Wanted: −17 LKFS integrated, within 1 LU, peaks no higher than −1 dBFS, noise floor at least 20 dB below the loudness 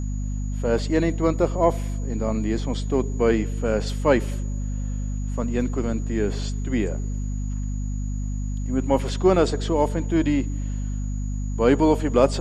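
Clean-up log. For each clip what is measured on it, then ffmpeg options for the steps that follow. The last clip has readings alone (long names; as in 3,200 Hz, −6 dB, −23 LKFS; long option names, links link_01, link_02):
mains hum 50 Hz; hum harmonics up to 250 Hz; level of the hum −24 dBFS; interfering tone 6,800 Hz; level of the tone −47 dBFS; integrated loudness −24.0 LKFS; sample peak −4.5 dBFS; target loudness −17.0 LKFS
→ -af "bandreject=frequency=50:width_type=h:width=6,bandreject=frequency=100:width_type=h:width=6,bandreject=frequency=150:width_type=h:width=6,bandreject=frequency=200:width_type=h:width=6,bandreject=frequency=250:width_type=h:width=6"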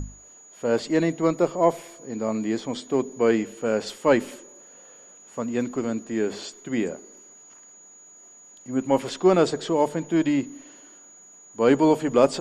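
mains hum none found; interfering tone 6,800 Hz; level of the tone −47 dBFS
→ -af "bandreject=frequency=6800:width=30"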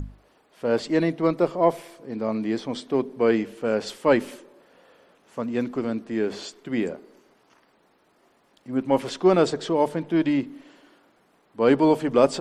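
interfering tone none found; integrated loudness −24.0 LKFS; sample peak −6.0 dBFS; target loudness −17.0 LKFS
→ -af "volume=7dB,alimiter=limit=-1dB:level=0:latency=1"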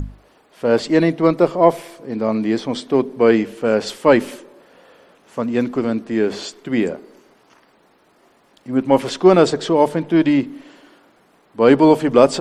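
integrated loudness −17.0 LKFS; sample peak −1.0 dBFS; background noise floor −56 dBFS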